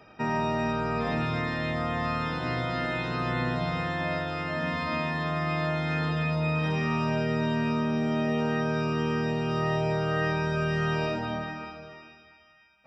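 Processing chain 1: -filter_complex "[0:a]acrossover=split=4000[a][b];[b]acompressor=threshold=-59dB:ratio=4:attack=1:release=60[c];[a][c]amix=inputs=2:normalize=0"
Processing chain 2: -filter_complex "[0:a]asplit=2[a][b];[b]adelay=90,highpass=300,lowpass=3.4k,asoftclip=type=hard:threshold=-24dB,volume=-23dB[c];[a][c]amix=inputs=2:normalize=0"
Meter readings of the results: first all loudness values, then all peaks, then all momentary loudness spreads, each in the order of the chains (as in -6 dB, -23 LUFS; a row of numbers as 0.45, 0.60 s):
-28.5, -28.5 LUFS; -16.0, -16.0 dBFS; 3, 3 LU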